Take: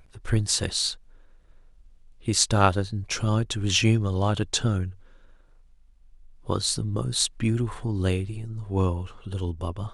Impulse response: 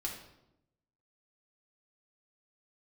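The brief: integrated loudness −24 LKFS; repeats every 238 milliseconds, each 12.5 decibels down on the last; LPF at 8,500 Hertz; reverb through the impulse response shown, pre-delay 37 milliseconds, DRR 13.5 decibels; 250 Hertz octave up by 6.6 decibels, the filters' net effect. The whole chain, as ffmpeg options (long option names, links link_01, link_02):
-filter_complex "[0:a]lowpass=8500,equalizer=frequency=250:width_type=o:gain=8.5,aecho=1:1:238|476|714:0.237|0.0569|0.0137,asplit=2[link_01][link_02];[1:a]atrim=start_sample=2205,adelay=37[link_03];[link_02][link_03]afir=irnorm=-1:irlink=0,volume=-14.5dB[link_04];[link_01][link_04]amix=inputs=2:normalize=0,volume=-1dB"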